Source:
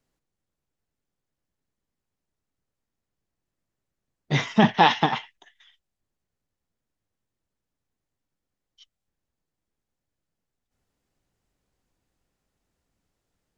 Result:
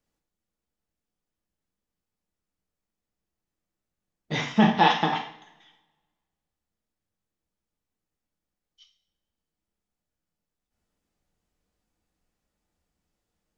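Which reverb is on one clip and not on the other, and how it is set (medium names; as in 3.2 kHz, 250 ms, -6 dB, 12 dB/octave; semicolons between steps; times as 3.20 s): two-slope reverb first 0.52 s, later 1.5 s, from -21 dB, DRR 1.5 dB; trim -4.5 dB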